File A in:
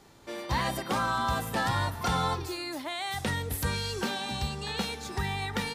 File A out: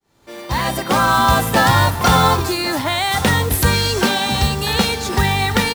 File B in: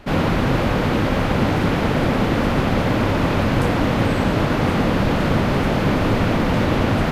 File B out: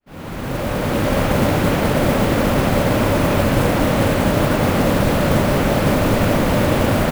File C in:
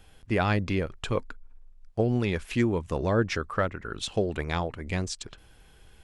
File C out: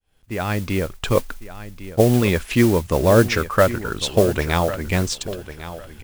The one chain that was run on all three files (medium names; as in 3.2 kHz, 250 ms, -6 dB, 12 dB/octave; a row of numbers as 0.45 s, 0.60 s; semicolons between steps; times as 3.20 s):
fade-in on the opening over 1.19 s; dynamic bell 580 Hz, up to +6 dB, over -40 dBFS, Q 5.6; modulation noise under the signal 18 dB; feedback delay 1102 ms, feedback 21%, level -14 dB; peak normalisation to -2 dBFS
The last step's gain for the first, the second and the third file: +15.0 dB, +1.0 dB, +9.0 dB